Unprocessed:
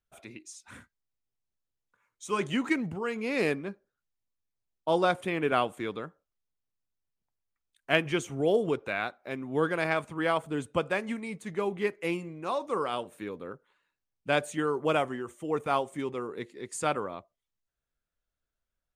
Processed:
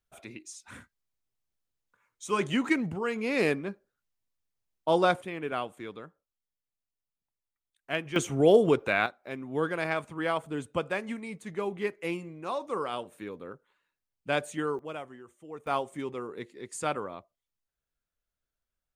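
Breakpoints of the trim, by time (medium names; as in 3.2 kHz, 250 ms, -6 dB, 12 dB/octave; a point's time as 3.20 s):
+1.5 dB
from 5.22 s -6.5 dB
from 8.16 s +5.5 dB
from 9.06 s -2 dB
from 14.79 s -12.5 dB
from 15.67 s -2 dB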